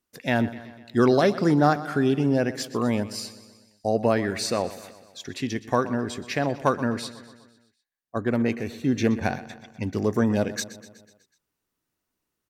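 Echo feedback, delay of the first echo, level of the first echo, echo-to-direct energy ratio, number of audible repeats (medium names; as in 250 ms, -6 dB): 59%, 124 ms, -16.0 dB, -14.0 dB, 5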